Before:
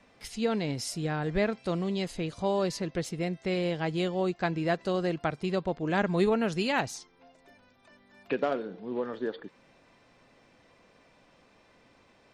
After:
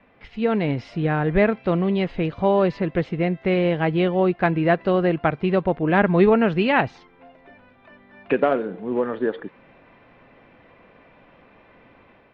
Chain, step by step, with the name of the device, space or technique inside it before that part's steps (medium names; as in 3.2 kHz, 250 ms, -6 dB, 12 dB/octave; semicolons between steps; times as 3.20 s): action camera in a waterproof case (low-pass 2.8 kHz 24 dB/octave; level rider gain up to 5.5 dB; trim +4 dB; AAC 96 kbps 48 kHz)